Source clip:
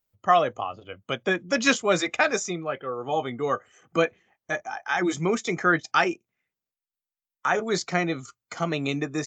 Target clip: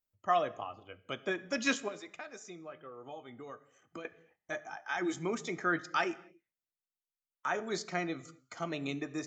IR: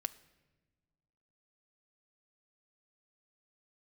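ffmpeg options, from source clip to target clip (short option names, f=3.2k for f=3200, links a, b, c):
-filter_complex "[0:a]asettb=1/sr,asplit=3[a][b][c];[a]atrim=end=1.884[d];[b]atrim=start=1.88:end=4.05,asetpts=PTS-STARTPTS,afade=t=in:d=0.004:c=qsin,afade=t=out:st=2.166:d=0.004:c=qsin,acompressor=threshold=-35dB:ratio=4[e];[c]atrim=start=4.046[f];[d][e]acrossfade=d=0.004:c1=hsin:c2=qsin[g];[g][f]acrossfade=d=0.004:c1=qsin:c2=hsin[h];[1:a]atrim=start_sample=2205,afade=t=out:st=0.32:d=0.01,atrim=end_sample=14553[i];[h][i]afir=irnorm=-1:irlink=0,volume=-9dB"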